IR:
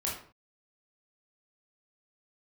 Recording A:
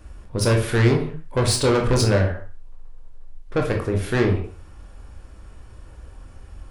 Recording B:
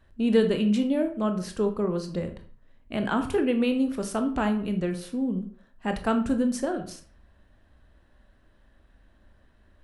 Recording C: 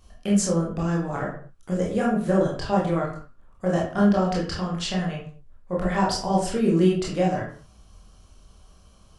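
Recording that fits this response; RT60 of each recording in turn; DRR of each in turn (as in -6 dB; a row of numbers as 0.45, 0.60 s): C; 0.45, 0.45, 0.45 s; 1.5, 6.5, -4.5 dB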